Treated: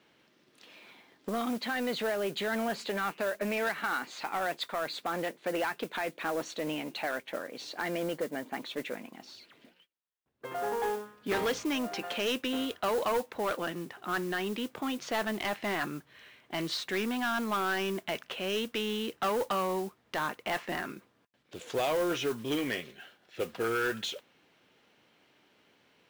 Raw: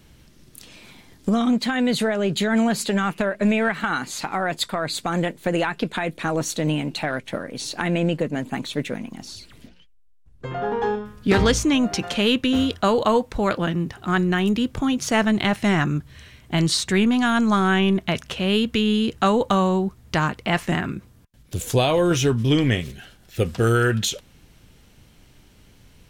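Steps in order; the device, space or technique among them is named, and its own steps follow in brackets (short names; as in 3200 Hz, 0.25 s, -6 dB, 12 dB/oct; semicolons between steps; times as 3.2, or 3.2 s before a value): carbon microphone (BPF 380–3400 Hz; soft clip -19 dBFS, distortion -12 dB; modulation noise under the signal 18 dB); 7.7–8.62 notch 2600 Hz, Q 9.4; gain -5 dB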